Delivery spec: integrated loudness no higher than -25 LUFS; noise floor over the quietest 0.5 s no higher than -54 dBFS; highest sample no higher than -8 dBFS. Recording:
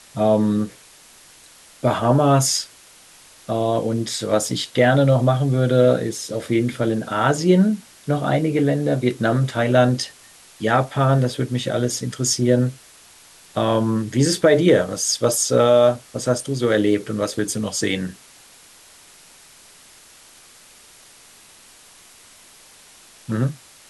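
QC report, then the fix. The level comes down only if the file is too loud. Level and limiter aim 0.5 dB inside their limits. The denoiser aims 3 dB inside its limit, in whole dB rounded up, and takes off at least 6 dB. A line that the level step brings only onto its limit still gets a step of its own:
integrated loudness -19.5 LUFS: fail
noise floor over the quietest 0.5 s -48 dBFS: fail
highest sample -4.5 dBFS: fail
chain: denoiser 6 dB, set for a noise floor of -48 dBFS; gain -6 dB

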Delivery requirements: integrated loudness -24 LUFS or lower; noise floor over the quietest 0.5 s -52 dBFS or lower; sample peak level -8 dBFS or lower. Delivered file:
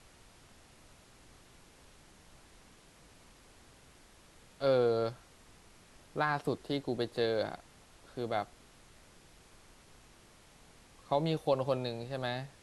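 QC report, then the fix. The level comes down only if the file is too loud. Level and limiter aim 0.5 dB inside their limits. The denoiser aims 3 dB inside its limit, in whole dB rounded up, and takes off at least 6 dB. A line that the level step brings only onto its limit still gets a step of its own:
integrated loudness -34.0 LUFS: OK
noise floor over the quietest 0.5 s -60 dBFS: OK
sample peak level -17.0 dBFS: OK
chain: none

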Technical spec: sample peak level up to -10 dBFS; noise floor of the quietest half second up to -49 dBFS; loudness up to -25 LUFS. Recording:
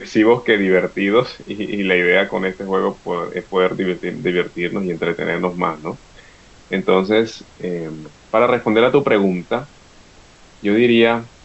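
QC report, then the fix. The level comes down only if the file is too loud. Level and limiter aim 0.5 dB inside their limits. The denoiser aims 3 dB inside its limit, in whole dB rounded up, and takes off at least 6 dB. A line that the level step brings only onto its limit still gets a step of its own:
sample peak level -2.0 dBFS: fail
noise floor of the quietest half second -46 dBFS: fail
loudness -18.0 LUFS: fail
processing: gain -7.5 dB; limiter -10.5 dBFS

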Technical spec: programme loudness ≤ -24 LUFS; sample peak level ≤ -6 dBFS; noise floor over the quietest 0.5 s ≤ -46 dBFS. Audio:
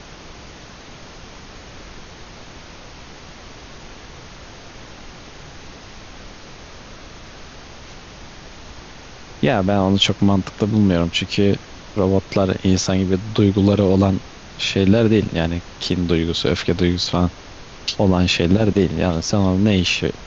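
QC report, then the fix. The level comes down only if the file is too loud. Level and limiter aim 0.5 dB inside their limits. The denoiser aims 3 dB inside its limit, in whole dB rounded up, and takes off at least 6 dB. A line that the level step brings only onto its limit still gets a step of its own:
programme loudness -18.5 LUFS: fail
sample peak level -3.5 dBFS: fail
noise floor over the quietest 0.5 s -39 dBFS: fail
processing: denoiser 6 dB, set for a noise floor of -39 dBFS; gain -6 dB

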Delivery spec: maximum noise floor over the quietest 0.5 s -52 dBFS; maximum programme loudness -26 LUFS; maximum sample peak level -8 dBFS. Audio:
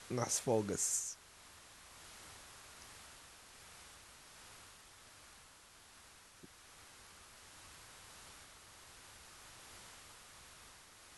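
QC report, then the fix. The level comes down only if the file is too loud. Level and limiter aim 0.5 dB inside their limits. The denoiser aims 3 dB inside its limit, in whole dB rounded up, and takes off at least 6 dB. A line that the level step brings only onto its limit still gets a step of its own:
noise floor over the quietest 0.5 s -61 dBFS: OK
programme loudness -42.0 LUFS: OK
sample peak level -20.5 dBFS: OK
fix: none

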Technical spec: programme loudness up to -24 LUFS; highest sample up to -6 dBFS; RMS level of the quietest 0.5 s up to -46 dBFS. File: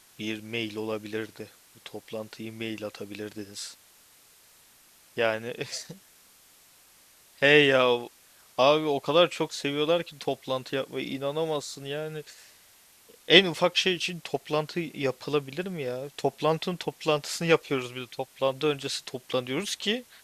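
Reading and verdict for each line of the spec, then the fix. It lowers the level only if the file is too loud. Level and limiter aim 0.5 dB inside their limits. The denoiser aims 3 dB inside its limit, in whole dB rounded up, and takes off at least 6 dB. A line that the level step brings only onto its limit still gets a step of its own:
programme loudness -27.0 LUFS: OK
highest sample -2.0 dBFS: fail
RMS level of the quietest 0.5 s -58 dBFS: OK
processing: limiter -6.5 dBFS

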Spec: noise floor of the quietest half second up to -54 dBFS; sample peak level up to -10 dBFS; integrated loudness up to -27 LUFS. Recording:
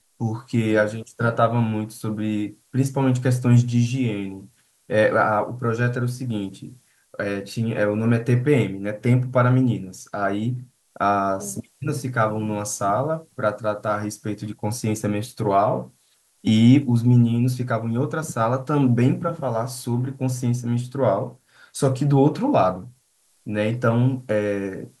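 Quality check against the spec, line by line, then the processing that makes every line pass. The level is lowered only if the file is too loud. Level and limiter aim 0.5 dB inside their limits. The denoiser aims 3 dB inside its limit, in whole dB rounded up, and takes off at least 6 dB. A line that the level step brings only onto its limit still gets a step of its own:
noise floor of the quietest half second -63 dBFS: OK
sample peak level -4.0 dBFS: fail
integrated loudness -22.0 LUFS: fail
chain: gain -5.5 dB; limiter -10.5 dBFS

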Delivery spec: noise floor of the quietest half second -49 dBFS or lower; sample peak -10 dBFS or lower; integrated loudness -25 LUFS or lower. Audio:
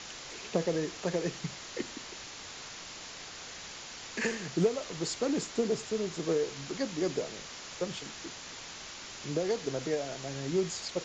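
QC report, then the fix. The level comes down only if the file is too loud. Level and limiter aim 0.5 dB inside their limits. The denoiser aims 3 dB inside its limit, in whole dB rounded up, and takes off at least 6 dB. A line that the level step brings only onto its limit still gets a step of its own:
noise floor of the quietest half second -45 dBFS: fail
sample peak -15.5 dBFS: OK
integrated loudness -35.0 LUFS: OK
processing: denoiser 7 dB, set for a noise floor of -45 dBFS

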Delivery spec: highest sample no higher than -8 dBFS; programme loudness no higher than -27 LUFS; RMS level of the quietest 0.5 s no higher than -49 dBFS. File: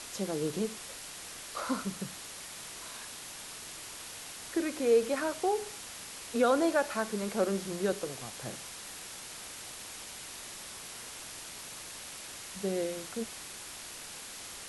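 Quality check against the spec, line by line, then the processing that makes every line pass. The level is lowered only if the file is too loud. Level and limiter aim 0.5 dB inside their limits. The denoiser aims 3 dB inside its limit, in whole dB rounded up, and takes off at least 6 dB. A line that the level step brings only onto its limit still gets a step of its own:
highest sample -15.0 dBFS: OK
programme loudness -35.0 LUFS: OK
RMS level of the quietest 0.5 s -45 dBFS: fail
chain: denoiser 7 dB, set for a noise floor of -45 dBFS

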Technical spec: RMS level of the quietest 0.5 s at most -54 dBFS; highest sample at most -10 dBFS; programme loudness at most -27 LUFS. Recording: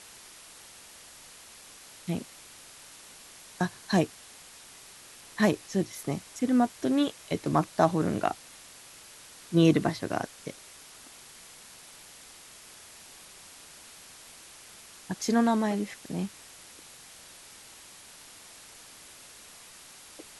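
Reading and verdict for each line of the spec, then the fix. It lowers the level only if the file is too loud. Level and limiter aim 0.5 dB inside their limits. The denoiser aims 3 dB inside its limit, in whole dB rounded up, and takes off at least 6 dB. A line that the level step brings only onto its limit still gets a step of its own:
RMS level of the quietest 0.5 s -50 dBFS: fail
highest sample -7.0 dBFS: fail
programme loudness -28.5 LUFS: OK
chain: denoiser 7 dB, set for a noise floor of -50 dBFS; limiter -10.5 dBFS

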